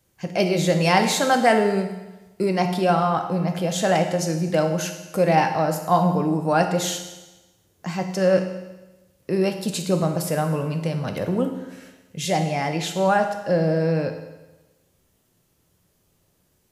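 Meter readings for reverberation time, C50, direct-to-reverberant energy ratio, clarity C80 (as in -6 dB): 1.1 s, 8.0 dB, 5.0 dB, 9.5 dB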